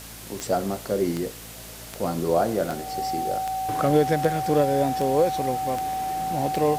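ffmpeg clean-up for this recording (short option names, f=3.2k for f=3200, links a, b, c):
-af "adeclick=t=4,bandreject=f=55.6:t=h:w=4,bandreject=f=111.2:t=h:w=4,bandreject=f=166.8:t=h:w=4,bandreject=f=222.4:t=h:w=4,bandreject=f=278:t=h:w=4,bandreject=f=760:w=30,afwtdn=0.0089"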